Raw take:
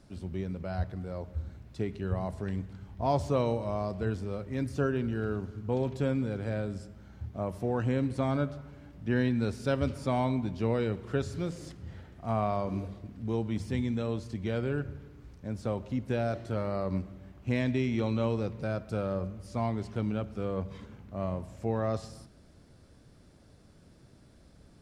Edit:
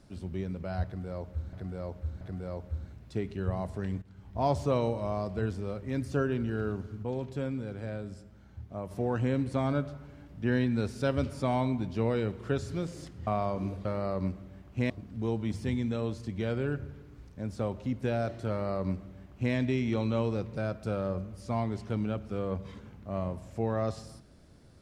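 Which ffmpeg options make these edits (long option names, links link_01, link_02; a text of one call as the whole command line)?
ffmpeg -i in.wav -filter_complex "[0:a]asplit=9[link_01][link_02][link_03][link_04][link_05][link_06][link_07][link_08][link_09];[link_01]atrim=end=1.532[link_10];[link_02]atrim=start=0.848:end=1.532[link_11];[link_03]atrim=start=0.848:end=2.66,asetpts=PTS-STARTPTS,afade=type=out:start_time=1.808:duration=0.004:curve=hsin:silence=0.211349[link_12];[link_04]atrim=start=2.66:end=5.672,asetpts=PTS-STARTPTS,afade=type=in:duration=0.37:silence=0.211349[link_13];[link_05]atrim=start=5.668:end=7.552,asetpts=PTS-STARTPTS,volume=-4.5dB[link_14];[link_06]atrim=start=7.548:end=11.912[link_15];[link_07]atrim=start=12.378:end=12.962[link_16];[link_08]atrim=start=16.548:end=17.602[link_17];[link_09]atrim=start=12.958[link_18];[link_10][link_11]acrossfade=duration=0.004:curve1=hsin:curve2=hsin[link_19];[link_12][link_13]concat=n=2:v=0:a=1[link_20];[link_19][link_20]acrossfade=duration=0.004:curve1=hsin:curve2=hsin[link_21];[link_21][link_14]acrossfade=duration=0.004:curve1=hsin:curve2=hsin[link_22];[link_22][link_15]acrossfade=duration=0.004:curve1=hsin:curve2=hsin[link_23];[link_23][link_16]acrossfade=duration=0.004:curve1=hsin:curve2=hsin[link_24];[link_24][link_17]acrossfade=duration=0.004:curve1=hsin:curve2=hsin[link_25];[link_25][link_18]acrossfade=duration=0.004:curve1=hsin:curve2=hsin" out.wav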